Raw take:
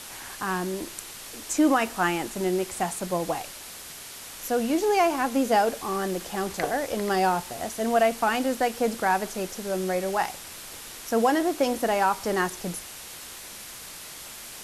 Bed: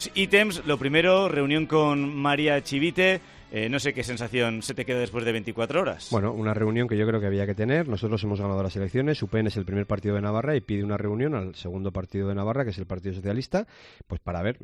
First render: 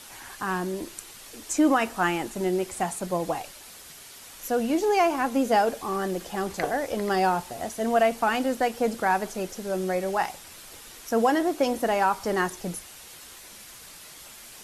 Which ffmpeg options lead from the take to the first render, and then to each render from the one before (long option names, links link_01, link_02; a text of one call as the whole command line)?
ffmpeg -i in.wav -af "afftdn=noise_reduction=6:noise_floor=-42" out.wav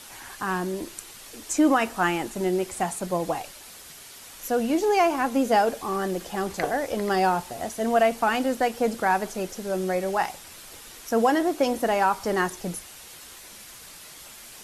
ffmpeg -i in.wav -af "volume=1dB" out.wav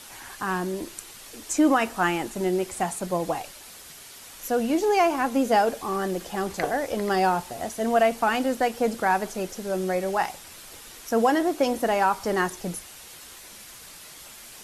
ffmpeg -i in.wav -af anull out.wav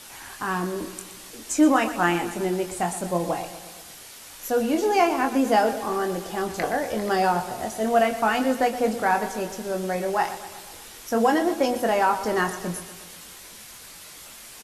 ffmpeg -i in.wav -filter_complex "[0:a]asplit=2[link_01][link_02];[link_02]adelay=23,volume=-7dB[link_03];[link_01][link_03]amix=inputs=2:normalize=0,aecho=1:1:121|242|363|484|605|726:0.211|0.127|0.0761|0.0457|0.0274|0.0164" out.wav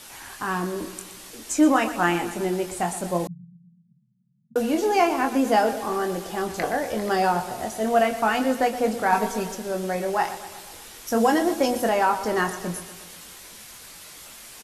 ffmpeg -i in.wav -filter_complex "[0:a]asettb=1/sr,asplit=3[link_01][link_02][link_03];[link_01]atrim=end=3.274[link_04];[link_02]atrim=start=3.27:end=4.56,asetpts=PTS-STARTPTS,afade=type=in:duration=0.004:curve=qsin,afade=type=out:start_time=1.286:duration=0.004:curve=qsin,asuperpass=centerf=160:order=12:qfactor=1.8[link_05];[link_03]atrim=start=4.556[link_06];[link_04][link_05]acrossfade=duration=0.004:curve1=hsin:curve2=qsin[link_07];[link_07][link_06]acrossfade=duration=0.004:curve1=qsin:curve2=hsin,asettb=1/sr,asplit=3[link_08][link_09][link_10];[link_08]atrim=end=9.124[link_11];[link_09]atrim=start=9.12:end=9.55,asetpts=PTS-STARTPTS,afade=type=in:duration=0.004:curve=qsin,afade=type=out:start_time=0.426:duration=0.004:curve=qsin,aecho=1:1:4.4:0.78,atrim=end_sample=18963[link_12];[link_10]atrim=start=9.546[link_13];[link_11][link_12]acrossfade=duration=0.004:curve1=hsin:curve2=qsin[link_14];[link_14][link_13]acrossfade=duration=0.004:curve1=qsin:curve2=hsin,asettb=1/sr,asplit=3[link_15][link_16][link_17];[link_15]atrim=end=11.074[link_18];[link_16]atrim=start=11.07:end=11.89,asetpts=PTS-STARTPTS,afade=type=in:duration=0.004:curve=qsin,afade=type=out:start_time=0.816:duration=0.004:curve=qsin,bass=frequency=250:gain=3,treble=frequency=4000:gain=4[link_19];[link_17]atrim=start=11.886[link_20];[link_18][link_19]acrossfade=duration=0.004:curve1=hsin:curve2=qsin[link_21];[link_21][link_20]acrossfade=duration=0.004:curve1=qsin:curve2=hsin" out.wav